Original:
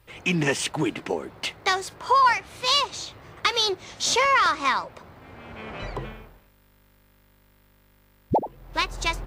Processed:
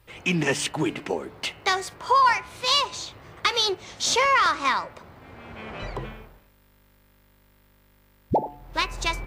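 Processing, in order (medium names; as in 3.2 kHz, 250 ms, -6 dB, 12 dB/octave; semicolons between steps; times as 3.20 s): de-hum 144.8 Hz, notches 21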